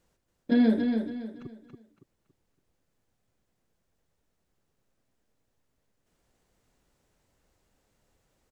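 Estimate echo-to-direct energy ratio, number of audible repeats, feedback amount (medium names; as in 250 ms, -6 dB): -5.5 dB, 3, 32%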